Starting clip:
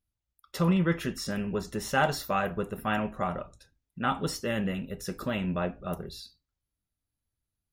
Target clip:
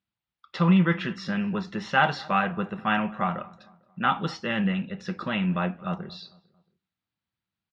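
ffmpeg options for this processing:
ffmpeg -i in.wav -filter_complex "[0:a]highpass=190,equalizer=frequency=190:width_type=q:width=4:gain=5,equalizer=frequency=270:width_type=q:width=4:gain=-8,equalizer=frequency=420:width_type=q:width=4:gain=-9,equalizer=frequency=600:width_type=q:width=4:gain=-7,lowpass=frequency=4100:width=0.5412,lowpass=frequency=4100:width=1.3066,asplit=2[link_01][link_02];[link_02]adelay=225,lowpass=frequency=1600:poles=1,volume=-22dB,asplit=2[link_03][link_04];[link_04]adelay=225,lowpass=frequency=1600:poles=1,volume=0.48,asplit=2[link_05][link_06];[link_06]adelay=225,lowpass=frequency=1600:poles=1,volume=0.48[link_07];[link_03][link_05][link_07]amix=inputs=3:normalize=0[link_08];[link_01][link_08]amix=inputs=2:normalize=0,volume=6dB" out.wav

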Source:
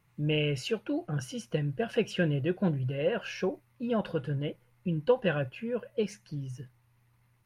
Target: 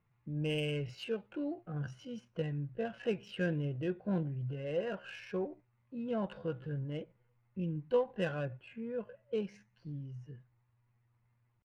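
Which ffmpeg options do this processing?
ffmpeg -i in.wav -af "atempo=0.64,adynamicsmooth=sensitivity=5:basefreq=2800,volume=-6.5dB" out.wav

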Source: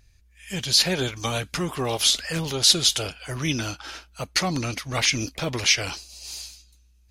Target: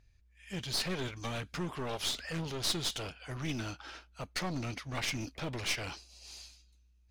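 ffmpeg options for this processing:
ffmpeg -i in.wav -af "aemphasis=mode=reproduction:type=50kf,aeval=exprs='clip(val(0),-1,0.0335)':channel_layout=same,volume=-7.5dB" out.wav

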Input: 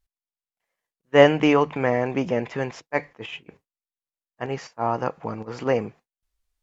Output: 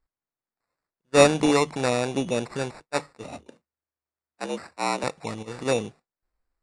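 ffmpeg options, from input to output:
ffmpeg -i in.wav -filter_complex "[0:a]acrusher=samples=14:mix=1:aa=0.000001,asettb=1/sr,asplit=3[link_01][link_02][link_03];[link_01]atrim=end=3.244[link_04];[link_02]atrim=start=3.24:end=5.04,asetpts=PTS-STARTPTS,afade=type=in:duration=0.004:curve=qsin,afade=type=out:start_time=1.796:duration=0.004:curve=qsin,afreqshift=75[link_05];[link_03]atrim=start=5.036[link_06];[link_04][link_05]acrossfade=duration=0.004:curve1=hsin:curve2=qsin[link_07];[link_07][link_06]acrossfade=duration=0.004:curve1=qsin:curve2=hsin,aresample=22050,aresample=44100,volume=-2dB" out.wav

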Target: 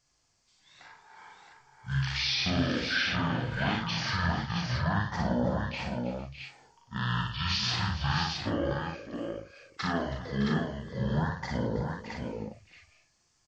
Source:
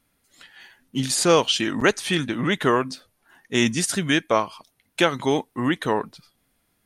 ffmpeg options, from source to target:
ffmpeg -i in.wav -af "highshelf=frequency=4700:gain=8.5,alimiter=limit=-12.5dB:level=0:latency=1:release=31,flanger=delay=19:depth=6.2:speed=2,asetrate=22447,aresample=44100,aecho=1:1:58|164|324|453|611|669:0.631|0.15|0.178|0.106|0.266|0.596,volume=-5.5dB" out.wav

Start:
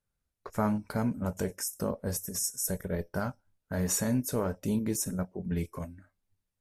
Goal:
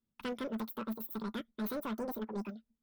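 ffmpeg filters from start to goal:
ffmpeg -i in.wav -af "equalizer=frequency=94:width=3.2:gain=15,asoftclip=type=tanh:threshold=-24.5dB,asetrate=103194,aresample=44100,volume=-7.5dB" out.wav

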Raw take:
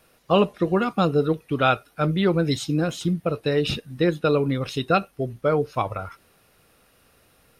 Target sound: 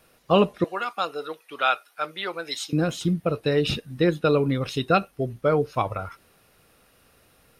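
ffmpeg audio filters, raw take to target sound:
ffmpeg -i in.wav -filter_complex "[0:a]asettb=1/sr,asplit=3[link_01][link_02][link_03];[link_01]atrim=end=0.644[link_04];[link_02]atrim=start=0.64:end=2.73,asetpts=PTS-STARTPTS,afade=type=in:duration=0.004:curve=qsin,afade=type=out:start_time=2.086:duration=0.004:curve=qsin,highpass=830[link_05];[link_03]atrim=start=2.726[link_06];[link_04][link_05]acrossfade=duration=0.004:curve1=hsin:curve2=qsin[link_07];[link_07][link_06]acrossfade=duration=0.004:curve1=qsin:curve2=hsin" out.wav

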